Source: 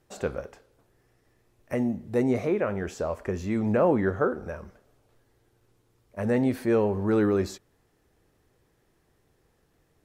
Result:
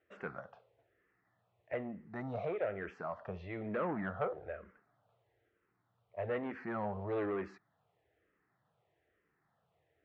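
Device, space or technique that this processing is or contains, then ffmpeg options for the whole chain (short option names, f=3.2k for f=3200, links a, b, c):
barber-pole phaser into a guitar amplifier: -filter_complex "[0:a]asplit=2[a][b];[b]afreqshift=-1.1[c];[a][c]amix=inputs=2:normalize=1,asoftclip=type=tanh:threshold=-22dB,highpass=110,equalizer=f=250:t=q:w=4:g=-8,equalizer=f=360:t=q:w=4:g=-4,equalizer=f=680:t=q:w=4:g=7,equalizer=f=1.3k:t=q:w=4:g=5,equalizer=f=1.9k:t=q:w=4:g=5,lowpass=f=3.4k:w=0.5412,lowpass=f=3.4k:w=1.3066,volume=-6.5dB"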